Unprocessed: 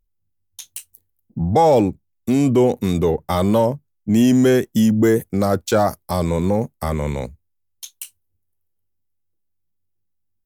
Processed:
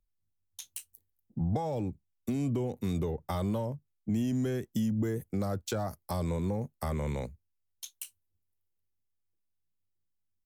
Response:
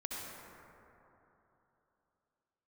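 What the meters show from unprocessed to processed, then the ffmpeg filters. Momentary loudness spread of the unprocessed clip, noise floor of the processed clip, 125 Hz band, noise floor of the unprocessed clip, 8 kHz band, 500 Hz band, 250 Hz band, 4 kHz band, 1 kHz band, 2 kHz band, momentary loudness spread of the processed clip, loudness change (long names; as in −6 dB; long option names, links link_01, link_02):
20 LU, −79 dBFS, −10.0 dB, −70 dBFS, −12.5 dB, −18.0 dB, −15.0 dB, −14.5 dB, −18.0 dB, −17.0 dB, 14 LU, −15.5 dB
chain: -filter_complex "[0:a]acrossover=split=150[link_01][link_02];[link_02]acompressor=threshold=-23dB:ratio=10[link_03];[link_01][link_03]amix=inputs=2:normalize=0,volume=-8.5dB"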